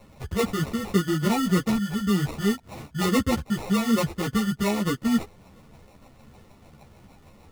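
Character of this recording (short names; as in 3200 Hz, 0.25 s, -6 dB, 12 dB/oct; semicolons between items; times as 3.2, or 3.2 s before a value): phasing stages 8, 3.3 Hz, lowest notch 720–2000 Hz; aliases and images of a low sample rate 1600 Hz, jitter 0%; a shimmering, thickened sound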